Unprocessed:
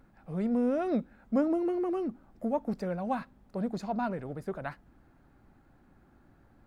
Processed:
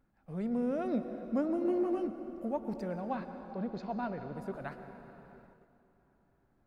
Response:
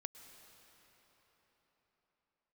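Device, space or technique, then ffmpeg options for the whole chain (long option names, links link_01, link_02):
cathedral: -filter_complex "[0:a]asettb=1/sr,asplit=3[link_01][link_02][link_03];[link_01]atrim=end=3.004[link_04];[link_02]atrim=start=3:end=4.34,asetpts=PTS-STARTPTS,afade=type=in:duration=0.004:curve=qsin,afade=type=out:start_time=1.336:duration=0.004:curve=qsin,lowpass=frequency=5000:width=0.5412,lowpass=frequency=5000:width=1.3066[link_05];[link_03]atrim=start=4.336[link_06];[link_04][link_05]acrossfade=duration=0.004:curve1=hsin:curve2=qsin[link_07];[link_07][link_06]acrossfade=duration=0.004:curve1=qsin:curve2=hsin[link_08];[1:a]atrim=start_sample=2205[link_09];[link_08][link_09]afir=irnorm=-1:irlink=0,agate=range=-8dB:threshold=-56dB:ratio=16:detection=peak,asettb=1/sr,asplit=3[link_10][link_11][link_12];[link_10]atrim=end=1.634[link_13];[link_11]atrim=start=1.63:end=2.07,asetpts=PTS-STARTPTS,afade=type=in:duration=0.004:curve=qsin,afade=type=out:start_time=0.436:duration=0.004:curve=qsin,asplit=2[link_14][link_15];[link_15]adelay=17,volume=-2.5dB[link_16];[link_14][link_16]amix=inputs=2:normalize=0,atrim=end_sample=19404[link_17];[link_12]atrim=start=2.066[link_18];[link_13][link_17]acrossfade=duration=0.004:curve1=hsin:curve2=qsin[link_19];[link_19][link_18]acrossfade=duration=0.004:curve1=qsin:curve2=hsin"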